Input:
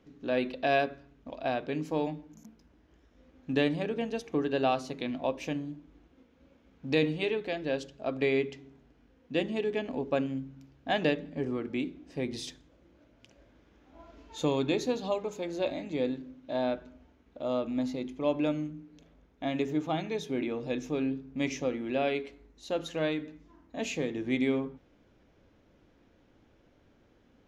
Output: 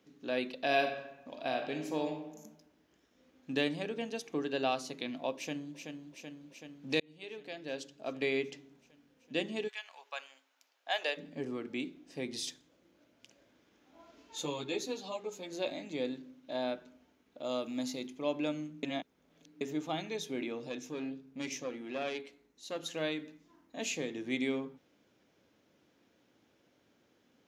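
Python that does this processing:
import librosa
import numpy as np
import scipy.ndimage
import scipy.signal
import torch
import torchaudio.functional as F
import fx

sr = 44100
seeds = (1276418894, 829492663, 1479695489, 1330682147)

y = fx.reverb_throw(x, sr, start_s=0.63, length_s=1.81, rt60_s=1.0, drr_db=4.5)
y = fx.echo_throw(y, sr, start_s=5.36, length_s=0.4, ms=380, feedback_pct=75, wet_db=-6.0)
y = fx.highpass(y, sr, hz=fx.line((9.67, 1100.0), (11.16, 500.0)), slope=24, at=(9.67, 11.16), fade=0.02)
y = fx.ensemble(y, sr, at=(14.42, 15.51), fade=0.02)
y = fx.high_shelf(y, sr, hz=3800.0, db=8.0, at=(17.44, 18.07))
y = fx.tube_stage(y, sr, drive_db=21.0, bias=0.55, at=(20.69, 22.83))
y = fx.edit(y, sr, fx.fade_in_span(start_s=7.0, length_s=1.57, curve='qsin'),
    fx.reverse_span(start_s=18.83, length_s=0.78), tone=tone)
y = scipy.signal.sosfilt(scipy.signal.butter(2, 150.0, 'highpass', fs=sr, output='sos'), y)
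y = fx.high_shelf(y, sr, hz=3200.0, db=11.0)
y = F.gain(torch.from_numpy(y), -5.5).numpy()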